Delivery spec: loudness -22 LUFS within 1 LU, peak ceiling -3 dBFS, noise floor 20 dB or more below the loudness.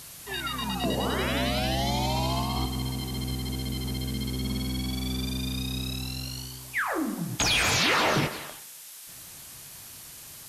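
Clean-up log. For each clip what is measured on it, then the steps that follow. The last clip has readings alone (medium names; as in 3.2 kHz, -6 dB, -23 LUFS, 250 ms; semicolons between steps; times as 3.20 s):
noise floor -45 dBFS; noise floor target -48 dBFS; loudness -28.0 LUFS; peak level -13.5 dBFS; loudness target -22.0 LUFS
-> noise print and reduce 6 dB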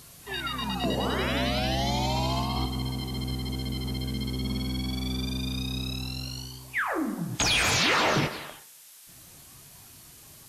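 noise floor -51 dBFS; loudness -28.0 LUFS; peak level -13.5 dBFS; loudness target -22.0 LUFS
-> trim +6 dB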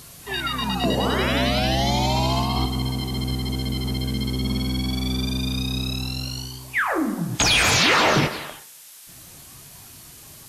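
loudness -22.0 LUFS; peak level -7.5 dBFS; noise floor -45 dBFS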